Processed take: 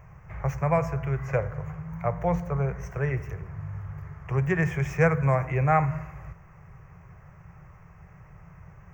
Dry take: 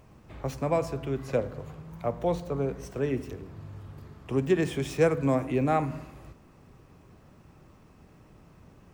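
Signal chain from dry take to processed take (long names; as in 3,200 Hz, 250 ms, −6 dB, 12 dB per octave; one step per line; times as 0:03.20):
drawn EQ curve 170 Hz 0 dB, 240 Hz −28 dB, 380 Hz −12 dB, 730 Hz −4 dB, 2,100 Hz +2 dB, 3,900 Hz −27 dB, 6,300 Hz −7 dB, 9,800 Hz −27 dB, 15,000 Hz −8 dB
level +7.5 dB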